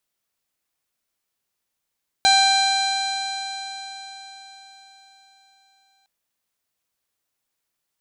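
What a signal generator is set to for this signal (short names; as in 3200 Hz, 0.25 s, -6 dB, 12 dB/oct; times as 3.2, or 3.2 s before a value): stretched partials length 3.81 s, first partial 778 Hz, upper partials -6.5/-8/-15/0/-17.5/-16/-12/-14.5/-19 dB, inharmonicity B 0.0031, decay 4.55 s, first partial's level -15.5 dB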